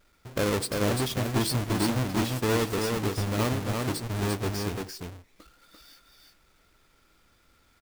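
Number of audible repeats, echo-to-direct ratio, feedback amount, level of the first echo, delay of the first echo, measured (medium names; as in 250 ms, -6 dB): 1, -3.5 dB, no regular repeats, -3.5 dB, 344 ms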